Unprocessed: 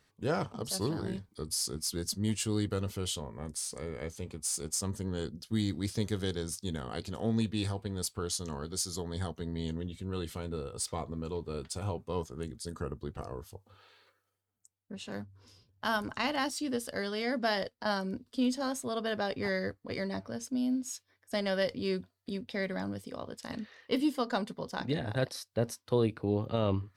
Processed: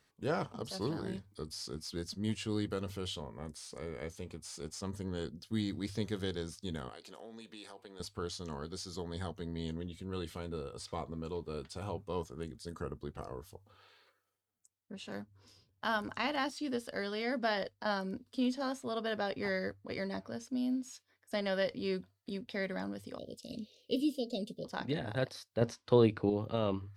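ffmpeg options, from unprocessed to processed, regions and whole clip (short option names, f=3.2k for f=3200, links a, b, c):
-filter_complex "[0:a]asettb=1/sr,asplit=3[a][b][c];[a]atrim=end=6.894[d];[b]atrim=start=6.89:end=8,asetpts=PTS-STARTPTS,afade=t=in:d=0.004:c=qsin,afade=t=out:st=1.106:d=0.004:c=qsin,highpass=380,acompressor=threshold=-44dB:ratio=4:attack=3.2:release=140:knee=1:detection=peak[e];[c]atrim=start=7.996[f];[d][e]acrossfade=d=0.004:c1=hsin:c2=qsin[g];[g][f]acrossfade=d=0.004:c1=qsin:c2=hsin,asettb=1/sr,asplit=3[h][i][j];[h]atrim=end=23.184[k];[i]atrim=start=23.18:end=24.65,asetpts=PTS-STARTPTS,afade=t=in:d=0.004:c=qsin,afade=t=out:st=1.466:d=0.004:c=qsin,asuperstop=centerf=1300:order=12:qfactor=0.62,highshelf=f=7.9k:g=6.5[l];[j]atrim=start=24.646[m];[k][l]acrossfade=d=0.004:c1=hsin:c2=qsin[n];[n][m]acrossfade=d=0.004:c1=qsin:c2=hsin,asettb=1/sr,asplit=3[o][p][q];[o]atrim=end=25.614[r];[p]atrim=start=25.61:end=26.3,asetpts=PTS-STARTPTS,afade=t=in:d=0.004:c=qsin,afade=t=out:st=0.686:d=0.004:c=qsin,lowpass=7.2k,acontrast=35[s];[q]atrim=start=26.296[t];[r][s]acrossfade=d=0.004:c1=hsin:c2=qsin[u];[u][t]acrossfade=d=0.004:c1=qsin:c2=hsin,bandreject=f=50:t=h:w=6,bandreject=f=100:t=h:w=6,acrossover=split=4700[v][w];[w]acompressor=threshold=-52dB:ratio=4:attack=1:release=60[x];[v][x]amix=inputs=2:normalize=0,lowshelf=f=190:g=-3,volume=-2dB"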